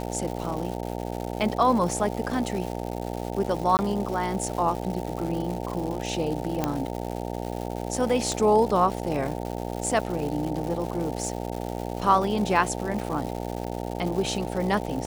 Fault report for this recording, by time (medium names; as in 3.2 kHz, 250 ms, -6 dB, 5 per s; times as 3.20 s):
buzz 60 Hz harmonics 15 -32 dBFS
crackle 330 per s -32 dBFS
3.77–3.79 s: dropout 19 ms
6.64 s: pop -10 dBFS
8.32 s: pop